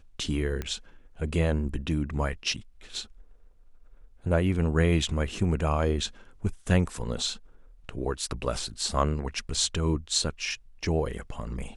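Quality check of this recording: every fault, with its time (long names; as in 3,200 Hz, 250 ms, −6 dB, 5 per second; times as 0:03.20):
0:00.62: click −19 dBFS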